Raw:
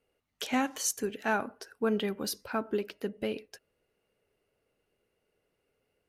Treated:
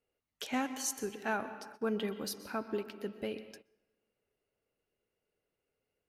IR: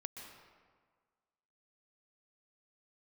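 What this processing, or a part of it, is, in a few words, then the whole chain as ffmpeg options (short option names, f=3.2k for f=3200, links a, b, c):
keyed gated reverb: -filter_complex "[0:a]asplit=3[a][b][c];[1:a]atrim=start_sample=2205[d];[b][d]afir=irnorm=-1:irlink=0[e];[c]apad=whole_len=268186[f];[e][f]sidechaingate=range=-16dB:threshold=-54dB:ratio=16:detection=peak,volume=0dB[g];[a][g]amix=inputs=2:normalize=0,volume=-9dB"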